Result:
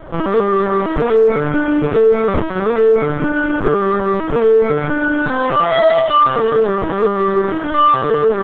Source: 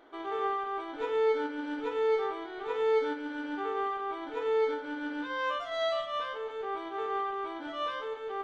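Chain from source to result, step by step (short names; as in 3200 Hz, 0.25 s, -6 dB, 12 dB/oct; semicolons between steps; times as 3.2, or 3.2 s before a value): dynamic EQ 130 Hz, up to +4 dB, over -56 dBFS, Q 2.8; LPF 1700 Hz 6 dB/oct; low shelf 430 Hz +4 dB; doubler 40 ms -3 dB; on a send: thinning echo 0.157 s, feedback 63%, high-pass 370 Hz, level -9.5 dB; on the sum: LPC vocoder at 8 kHz pitch kept; maximiser +26 dB; gain -3.5 dB; Opus 10 kbps 48000 Hz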